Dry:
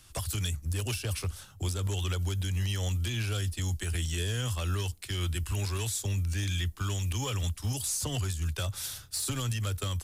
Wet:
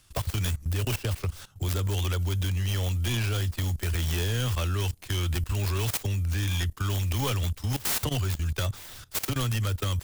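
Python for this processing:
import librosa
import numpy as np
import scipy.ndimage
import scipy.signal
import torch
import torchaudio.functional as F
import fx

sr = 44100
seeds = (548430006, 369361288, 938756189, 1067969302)

y = fx.tracing_dist(x, sr, depth_ms=0.29)
y = fx.level_steps(y, sr, step_db=17)
y = F.gain(torch.from_numpy(y), 7.5).numpy()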